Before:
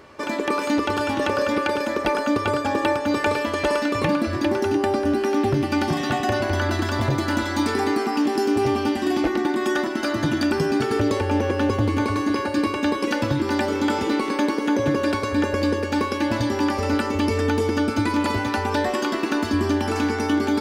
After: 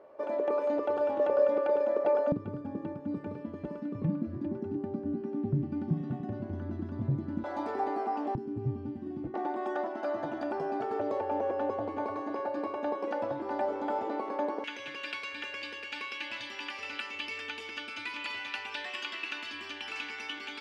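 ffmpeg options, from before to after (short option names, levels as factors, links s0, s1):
-af "asetnsamples=n=441:p=0,asendcmd='2.32 bandpass f 170;7.44 bandpass f 670;8.35 bandpass f 130;9.34 bandpass f 690;14.64 bandpass f 2700',bandpass=f=590:t=q:w=3.3:csg=0"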